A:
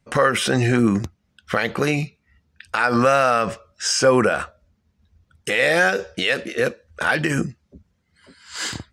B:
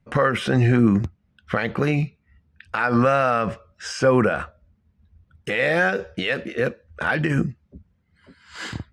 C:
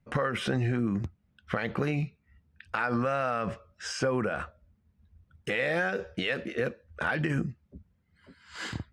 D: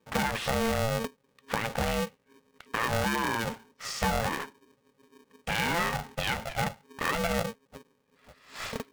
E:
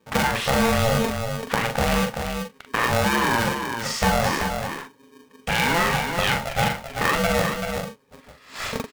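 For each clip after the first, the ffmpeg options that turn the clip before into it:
ffmpeg -i in.wav -af "bass=frequency=250:gain=6,treble=frequency=4000:gain=-12,volume=-2.5dB" out.wav
ffmpeg -i in.wav -af "acompressor=threshold=-20dB:ratio=6,volume=-4.5dB" out.wav
ffmpeg -i in.wav -af "aeval=exprs='val(0)*sgn(sin(2*PI*340*n/s))':channel_layout=same" out.wav
ffmpeg -i in.wav -filter_complex "[0:a]asplit=2[link_01][link_02];[link_02]adelay=42,volume=-6dB[link_03];[link_01][link_03]amix=inputs=2:normalize=0,asplit=2[link_04][link_05];[link_05]aecho=0:1:385:0.473[link_06];[link_04][link_06]amix=inputs=2:normalize=0,volume=6.5dB" out.wav

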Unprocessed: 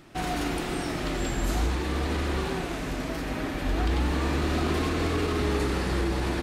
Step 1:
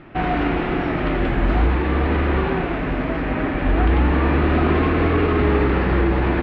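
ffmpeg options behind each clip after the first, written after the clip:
ffmpeg -i in.wav -af "lowpass=frequency=2600:width=0.5412,lowpass=frequency=2600:width=1.3066,volume=9dB" out.wav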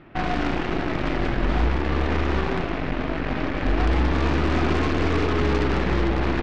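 ffmpeg -i in.wav -af "aeval=exprs='0.447*(cos(1*acos(clip(val(0)/0.447,-1,1)))-cos(1*PI/2))+0.0631*(cos(8*acos(clip(val(0)/0.447,-1,1)))-cos(8*PI/2))':channel_layout=same,bass=frequency=250:gain=1,treble=frequency=4000:gain=4,volume=-5.5dB" out.wav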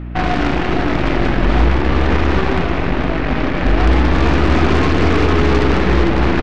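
ffmpeg -i in.wav -af "aeval=exprs='val(0)+0.0224*(sin(2*PI*60*n/s)+sin(2*PI*2*60*n/s)/2+sin(2*PI*3*60*n/s)/3+sin(2*PI*4*60*n/s)/4+sin(2*PI*5*60*n/s)/5)':channel_layout=same,aecho=1:1:461:0.335,volume=7.5dB" out.wav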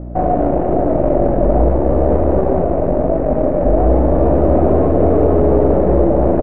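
ffmpeg -i in.wav -af "lowpass=frequency=600:width_type=q:width=5,volume=-1.5dB" out.wav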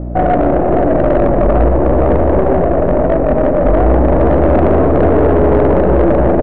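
ffmpeg -i in.wav -af "asoftclip=type=tanh:threshold=-11dB,volume=6dB" out.wav

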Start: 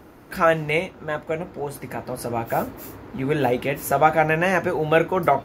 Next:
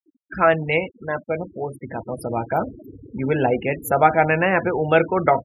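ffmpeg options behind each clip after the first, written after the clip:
ffmpeg -i in.wav -af "afftfilt=real='re*gte(hypot(re,im),0.0447)':imag='im*gte(hypot(re,im),0.0447)':win_size=1024:overlap=0.75,volume=1.5dB" out.wav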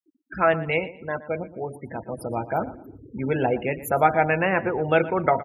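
ffmpeg -i in.wav -filter_complex "[0:a]asplit=2[link_01][link_02];[link_02]adelay=118,lowpass=frequency=3800:poles=1,volume=-16dB,asplit=2[link_03][link_04];[link_04]adelay=118,lowpass=frequency=3800:poles=1,volume=0.3,asplit=2[link_05][link_06];[link_06]adelay=118,lowpass=frequency=3800:poles=1,volume=0.3[link_07];[link_01][link_03][link_05][link_07]amix=inputs=4:normalize=0,volume=-3.5dB" out.wav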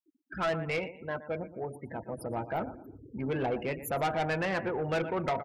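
ffmpeg -i in.wav -af "asoftclip=type=tanh:threshold=-20dB,volume=-5dB" out.wav

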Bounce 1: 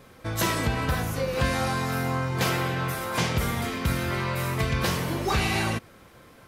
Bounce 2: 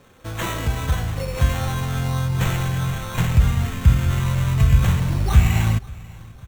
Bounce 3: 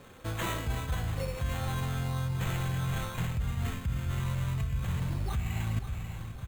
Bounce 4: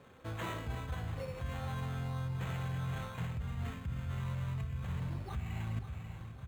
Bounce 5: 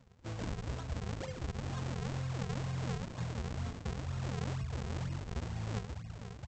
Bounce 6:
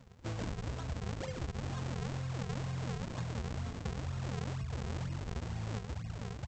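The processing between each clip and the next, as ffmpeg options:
ffmpeg -i in.wav -af "acrusher=samples=9:mix=1:aa=0.000001,asubboost=boost=11.5:cutoff=110,aecho=1:1:539|1078|1617:0.075|0.0322|0.0139,volume=-1dB" out.wav
ffmpeg -i in.wav -af "bandreject=frequency=5700:width=8.6,alimiter=limit=-11dB:level=0:latency=1:release=295,areverse,acompressor=threshold=-29dB:ratio=6,areverse" out.wav
ffmpeg -i in.wav -af "highpass=54,highshelf=frequency=4300:gain=-10.5,bandreject=frequency=50:width_type=h:width=6,bandreject=frequency=100:width_type=h:width=6,bandreject=frequency=150:width_type=h:width=6,bandreject=frequency=200:width_type=h:width=6,bandreject=frequency=250:width_type=h:width=6,bandreject=frequency=300:width_type=h:width=6,bandreject=frequency=350:width_type=h:width=6,volume=-5dB" out.wav
ffmpeg -i in.wav -af "afftfilt=real='re*gte(hypot(re,im),0.00447)':imag='im*gte(hypot(re,im),0.00447)':win_size=1024:overlap=0.75,aresample=16000,acrusher=samples=31:mix=1:aa=0.000001:lfo=1:lforange=49.6:lforate=2.1,aresample=44100" out.wav
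ffmpeg -i in.wav -af "acompressor=threshold=-40dB:ratio=6,volume=5dB" out.wav

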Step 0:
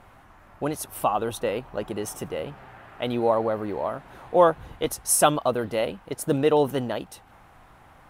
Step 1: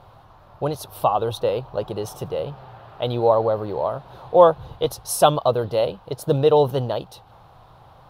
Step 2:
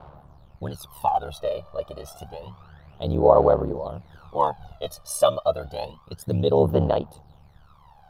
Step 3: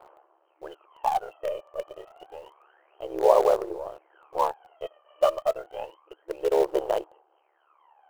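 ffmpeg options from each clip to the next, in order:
ffmpeg -i in.wav -af "equalizer=frequency=125:width_type=o:width=1:gain=10,equalizer=frequency=250:width_type=o:width=1:gain=-7,equalizer=frequency=500:width_type=o:width=1:gain=6,equalizer=frequency=1000:width_type=o:width=1:gain=5,equalizer=frequency=2000:width_type=o:width=1:gain=-11,equalizer=frequency=4000:width_type=o:width=1:gain=11,equalizer=frequency=8000:width_type=o:width=1:gain=-9" out.wav
ffmpeg -i in.wav -af "aeval=exprs='val(0)*sin(2*PI*36*n/s)':channel_layout=same,aphaser=in_gain=1:out_gain=1:delay=1.7:decay=0.78:speed=0.29:type=sinusoidal,volume=-6.5dB" out.wav
ffmpeg -i in.wav -filter_complex "[0:a]afftfilt=real='re*between(b*sr/4096,320,3200)':imag='im*between(b*sr/4096,320,3200)':win_size=4096:overlap=0.75,asplit=2[link_01][link_02];[link_02]acrusher=bits=4:dc=4:mix=0:aa=0.000001,volume=-11dB[link_03];[link_01][link_03]amix=inputs=2:normalize=0,volume=-5dB" out.wav

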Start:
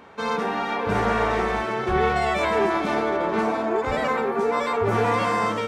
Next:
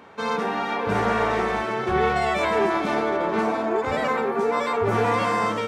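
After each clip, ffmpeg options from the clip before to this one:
ffmpeg -i in.wav -af "highpass=73" out.wav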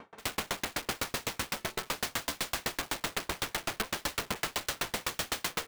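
ffmpeg -i in.wav -filter_complex "[0:a]asplit=2[link_01][link_02];[link_02]alimiter=limit=-20.5dB:level=0:latency=1:release=68,volume=-1dB[link_03];[link_01][link_03]amix=inputs=2:normalize=0,aeval=exprs='(mod(8.41*val(0)+1,2)-1)/8.41':channel_layout=same,aeval=exprs='val(0)*pow(10,-38*if(lt(mod(7.9*n/s,1),2*abs(7.9)/1000),1-mod(7.9*n/s,1)/(2*abs(7.9)/1000),(mod(7.9*n/s,1)-2*abs(7.9)/1000)/(1-2*abs(7.9)/1000))/20)':channel_layout=same,volume=-3dB" out.wav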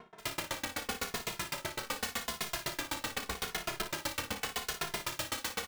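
ffmpeg -i in.wav -filter_complex "[0:a]asplit=2[link_01][link_02];[link_02]aecho=0:1:32|57:0.266|0.299[link_03];[link_01][link_03]amix=inputs=2:normalize=0,asplit=2[link_04][link_05];[link_05]adelay=2.4,afreqshift=-0.84[link_06];[link_04][link_06]amix=inputs=2:normalize=1" out.wav

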